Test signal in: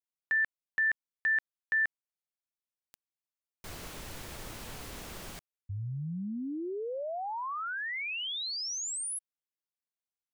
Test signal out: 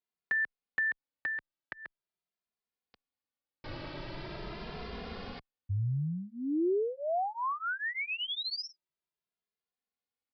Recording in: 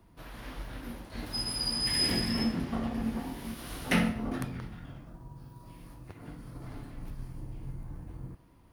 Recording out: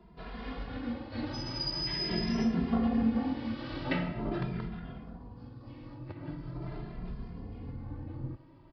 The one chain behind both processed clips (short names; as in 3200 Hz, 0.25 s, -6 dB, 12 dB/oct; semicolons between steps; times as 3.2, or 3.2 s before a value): low shelf 170 Hz -8.5 dB; compressor 4:1, threshold -33 dBFS; downsampling 11025 Hz; tilt shelf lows +4.5 dB, about 690 Hz; endless flanger 2.5 ms +0.43 Hz; gain +7.5 dB